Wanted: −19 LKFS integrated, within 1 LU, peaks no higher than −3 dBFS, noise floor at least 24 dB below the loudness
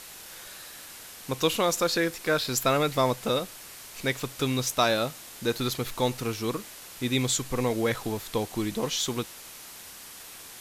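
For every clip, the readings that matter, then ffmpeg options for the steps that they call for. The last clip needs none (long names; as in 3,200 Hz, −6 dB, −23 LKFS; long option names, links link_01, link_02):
background noise floor −45 dBFS; target noise floor −52 dBFS; integrated loudness −27.5 LKFS; sample peak −10.0 dBFS; target loudness −19.0 LKFS
→ -af "afftdn=noise_reduction=7:noise_floor=-45"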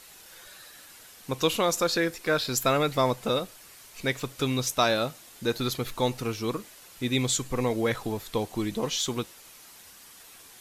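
background noise floor −51 dBFS; target noise floor −52 dBFS
→ -af "afftdn=noise_reduction=6:noise_floor=-51"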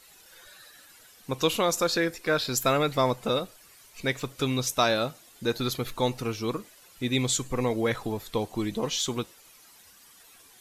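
background noise floor −55 dBFS; integrated loudness −28.0 LKFS; sample peak −10.5 dBFS; target loudness −19.0 LKFS
→ -af "volume=9dB,alimiter=limit=-3dB:level=0:latency=1"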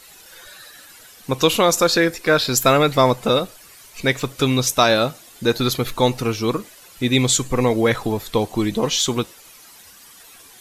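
integrated loudness −19.0 LKFS; sample peak −3.0 dBFS; background noise floor −46 dBFS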